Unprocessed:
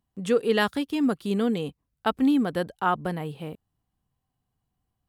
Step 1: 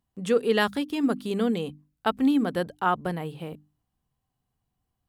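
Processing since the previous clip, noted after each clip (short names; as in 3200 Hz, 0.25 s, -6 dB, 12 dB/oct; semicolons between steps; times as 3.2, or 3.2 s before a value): notches 50/100/150/200/250/300 Hz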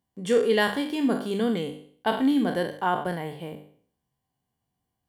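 spectral trails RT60 0.53 s; notch comb 1300 Hz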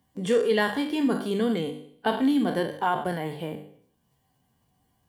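bin magnitudes rounded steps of 15 dB; three-band squash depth 40%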